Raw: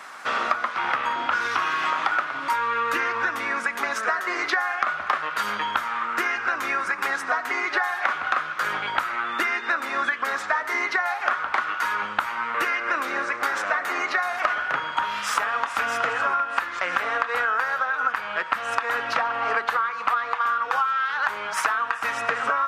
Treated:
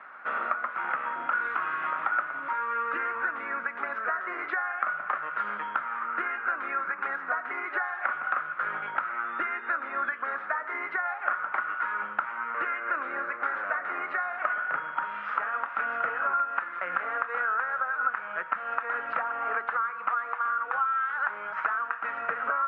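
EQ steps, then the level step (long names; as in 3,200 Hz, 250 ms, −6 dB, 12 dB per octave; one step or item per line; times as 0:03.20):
loudspeaker in its box 160–2,300 Hz, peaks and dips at 170 Hz +6 dB, 570 Hz +3 dB, 1,400 Hz +7 dB
−9.0 dB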